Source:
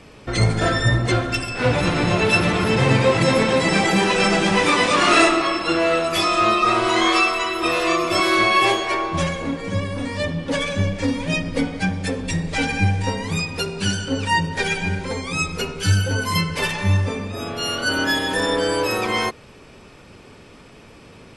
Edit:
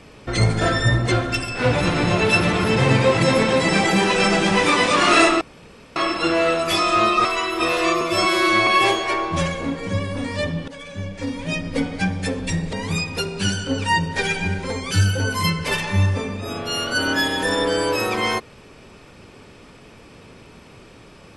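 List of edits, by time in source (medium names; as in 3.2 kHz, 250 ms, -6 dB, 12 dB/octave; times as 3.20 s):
5.41 s: insert room tone 0.55 s
6.70–7.28 s: delete
8.04–8.48 s: stretch 1.5×
10.49–11.74 s: fade in, from -18.5 dB
12.54–13.14 s: delete
15.32–15.82 s: delete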